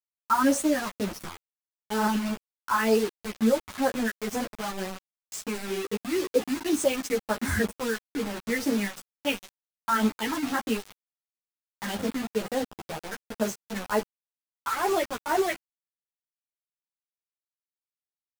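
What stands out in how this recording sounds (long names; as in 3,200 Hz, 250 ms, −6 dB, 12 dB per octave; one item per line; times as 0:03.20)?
phaser sweep stages 4, 2.1 Hz, lowest notch 430–3,600 Hz
a quantiser's noise floor 6 bits, dither none
a shimmering, thickened sound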